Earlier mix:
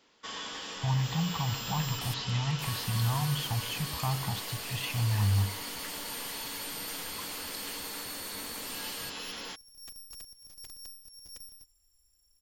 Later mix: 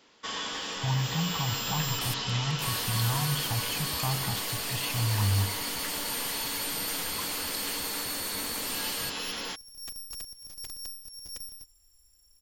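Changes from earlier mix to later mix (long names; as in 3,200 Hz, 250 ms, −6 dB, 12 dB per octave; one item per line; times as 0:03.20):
first sound +5.0 dB
second sound +6.5 dB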